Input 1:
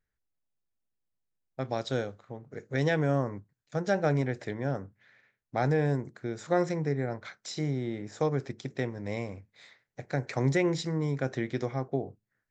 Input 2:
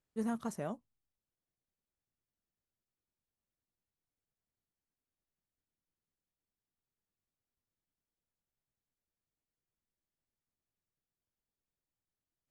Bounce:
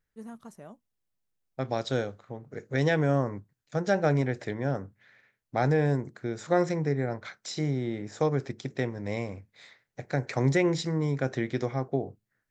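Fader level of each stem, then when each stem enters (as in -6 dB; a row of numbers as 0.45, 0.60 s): +2.0, -7.5 dB; 0.00, 0.00 s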